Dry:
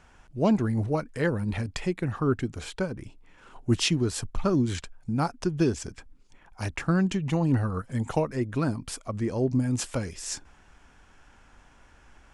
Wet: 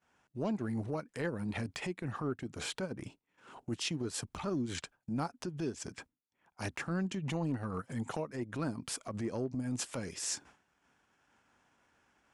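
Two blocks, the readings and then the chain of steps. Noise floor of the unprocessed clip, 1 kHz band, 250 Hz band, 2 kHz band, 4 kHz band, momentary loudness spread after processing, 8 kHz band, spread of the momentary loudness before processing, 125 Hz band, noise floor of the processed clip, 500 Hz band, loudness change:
-57 dBFS, -8.5 dB, -10.0 dB, -7.0 dB, -7.0 dB, 7 LU, -4.5 dB, 10 LU, -12.0 dB, -82 dBFS, -10.0 dB, -10.0 dB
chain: HPF 140 Hz 12 dB/oct; expander -48 dBFS; compressor 6:1, threshold -36 dBFS, peak gain reduction 16.5 dB; transient shaper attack -8 dB, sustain -4 dB; gain +4.5 dB

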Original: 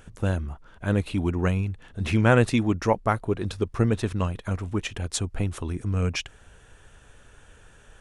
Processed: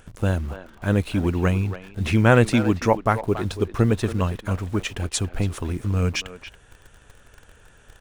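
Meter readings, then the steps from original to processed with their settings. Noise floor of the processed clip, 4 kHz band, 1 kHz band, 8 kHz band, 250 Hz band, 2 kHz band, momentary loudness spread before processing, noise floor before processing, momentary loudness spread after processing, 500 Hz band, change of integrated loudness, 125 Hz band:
-53 dBFS, +3.0 dB, +3.5 dB, +3.0 dB, +3.0 dB, +3.5 dB, 11 LU, -53 dBFS, 11 LU, +3.5 dB, +3.0 dB, +3.0 dB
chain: in parallel at -7.5 dB: bit-crush 7-bit; on the sum: speakerphone echo 0.28 s, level -11 dB

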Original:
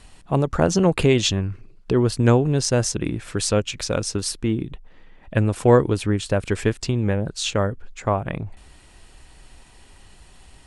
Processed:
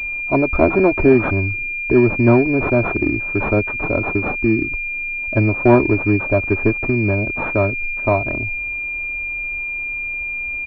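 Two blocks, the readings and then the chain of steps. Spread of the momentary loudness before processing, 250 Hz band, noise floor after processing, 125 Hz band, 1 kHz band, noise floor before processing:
10 LU, +5.5 dB, -25 dBFS, +1.0 dB, +4.0 dB, -50 dBFS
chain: comb 3.1 ms, depth 88%; pulse-width modulation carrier 2400 Hz; gain +3 dB

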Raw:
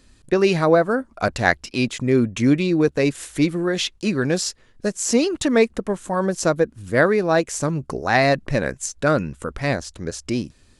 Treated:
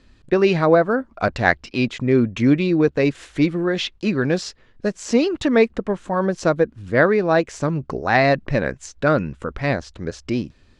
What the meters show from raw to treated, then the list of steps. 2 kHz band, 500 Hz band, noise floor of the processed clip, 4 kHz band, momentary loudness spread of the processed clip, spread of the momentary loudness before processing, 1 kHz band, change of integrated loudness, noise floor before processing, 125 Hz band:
+1.0 dB, +1.0 dB, -55 dBFS, -2.0 dB, 9 LU, 9 LU, +1.0 dB, +1.0 dB, -55 dBFS, +1.0 dB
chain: LPF 3900 Hz 12 dB/oct; gain +1 dB

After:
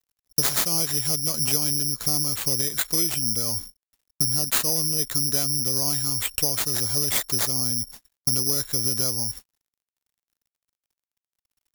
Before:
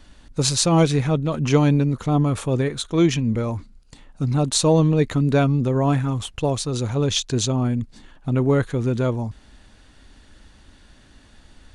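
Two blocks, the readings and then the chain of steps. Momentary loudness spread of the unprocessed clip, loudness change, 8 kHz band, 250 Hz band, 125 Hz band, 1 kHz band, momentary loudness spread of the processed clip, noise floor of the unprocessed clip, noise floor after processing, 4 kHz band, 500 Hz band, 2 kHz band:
9 LU, -1.0 dB, +6.5 dB, -14.0 dB, -13.5 dB, -10.5 dB, 4 LU, -51 dBFS, under -85 dBFS, +3.0 dB, -14.0 dB, -2.5 dB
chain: gate -38 dBFS, range -41 dB; high shelf 2200 Hz +7 dB; companded quantiser 8-bit; careless resampling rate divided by 8×, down none, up zero stuff; compressor 5:1, threshold -19 dBFS, peak gain reduction 18.5 dB

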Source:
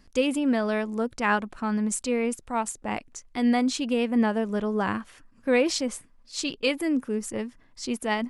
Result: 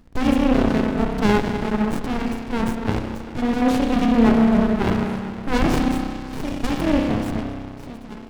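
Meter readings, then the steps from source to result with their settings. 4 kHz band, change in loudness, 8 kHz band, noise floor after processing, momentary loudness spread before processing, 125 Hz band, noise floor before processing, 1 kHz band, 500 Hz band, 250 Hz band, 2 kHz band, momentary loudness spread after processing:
+0.5 dB, +6.0 dB, n/a, -36 dBFS, 11 LU, +14.5 dB, -58 dBFS, +5.0 dB, +3.0 dB, +7.0 dB, +1.5 dB, 13 LU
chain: ending faded out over 1.14 s; spring tank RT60 2.4 s, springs 31 ms, chirp 25 ms, DRR 0 dB; running maximum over 65 samples; gain +7.5 dB

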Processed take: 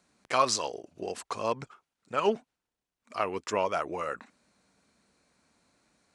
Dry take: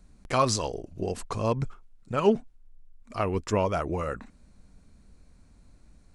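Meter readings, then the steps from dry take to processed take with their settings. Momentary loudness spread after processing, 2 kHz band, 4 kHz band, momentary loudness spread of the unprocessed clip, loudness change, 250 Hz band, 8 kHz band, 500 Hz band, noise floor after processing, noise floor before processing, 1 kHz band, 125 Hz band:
12 LU, +1.0 dB, +1.0 dB, 10 LU, -2.5 dB, -9.0 dB, -0.5 dB, -3.5 dB, under -85 dBFS, -58 dBFS, 0.0 dB, -16.0 dB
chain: weighting filter A

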